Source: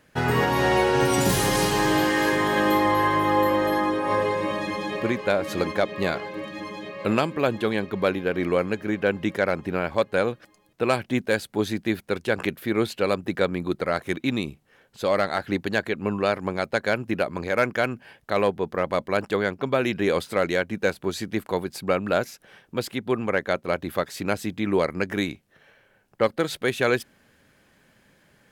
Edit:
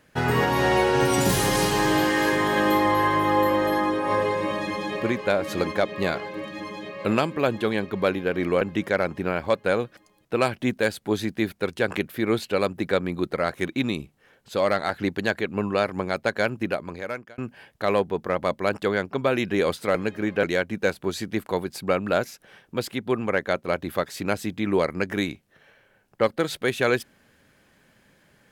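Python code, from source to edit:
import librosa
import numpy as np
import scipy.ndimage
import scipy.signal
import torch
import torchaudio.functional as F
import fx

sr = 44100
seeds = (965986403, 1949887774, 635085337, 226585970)

y = fx.edit(x, sr, fx.move(start_s=8.61, length_s=0.48, to_s=20.43),
    fx.fade_out_span(start_s=17.04, length_s=0.82), tone=tone)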